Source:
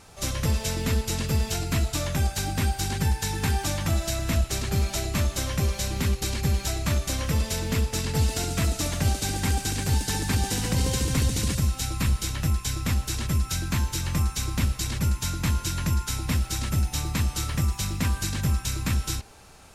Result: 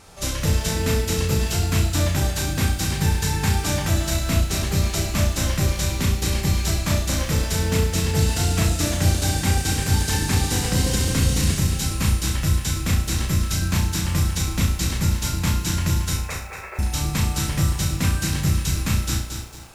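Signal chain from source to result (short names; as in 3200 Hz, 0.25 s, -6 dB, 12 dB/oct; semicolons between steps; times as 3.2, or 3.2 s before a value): 16.17–16.79 brick-wall FIR band-pass 360–2700 Hz; flutter echo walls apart 5.8 m, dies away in 0.4 s; lo-fi delay 0.226 s, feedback 35%, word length 8-bit, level -6 dB; gain +2 dB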